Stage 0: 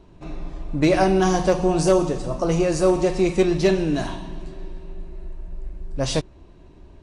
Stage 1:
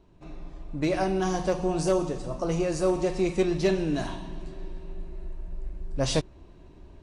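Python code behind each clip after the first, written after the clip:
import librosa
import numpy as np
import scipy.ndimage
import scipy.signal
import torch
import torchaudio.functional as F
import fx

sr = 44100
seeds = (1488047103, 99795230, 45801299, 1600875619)

y = fx.rider(x, sr, range_db=10, speed_s=2.0)
y = F.gain(torch.from_numpy(y), -6.5).numpy()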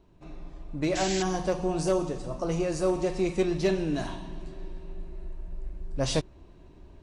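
y = fx.spec_paint(x, sr, seeds[0], shape='noise', start_s=0.95, length_s=0.28, low_hz=1500.0, high_hz=7900.0, level_db=-33.0)
y = F.gain(torch.from_numpy(y), -1.5).numpy()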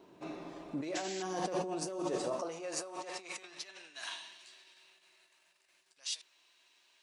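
y = fx.over_compress(x, sr, threshold_db=-35.0, ratio=-1.0)
y = fx.filter_sweep_highpass(y, sr, from_hz=300.0, to_hz=2800.0, start_s=1.97, end_s=4.44, q=0.85)
y = F.gain(torch.from_numpy(y), 1.5).numpy()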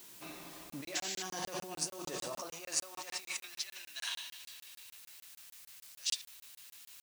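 y = fx.quant_dither(x, sr, seeds[1], bits=10, dither='triangular')
y = fx.tone_stack(y, sr, knobs='5-5-5')
y = fx.buffer_crackle(y, sr, first_s=0.7, period_s=0.15, block=1024, kind='zero')
y = F.gain(torch.from_numpy(y), 12.0).numpy()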